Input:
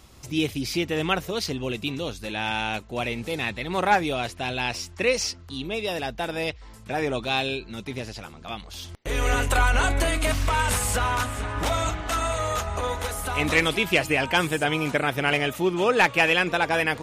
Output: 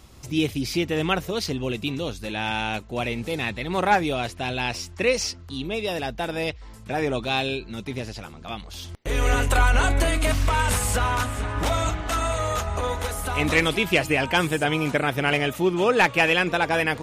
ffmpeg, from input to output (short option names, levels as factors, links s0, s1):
-af "lowshelf=f=430:g=3"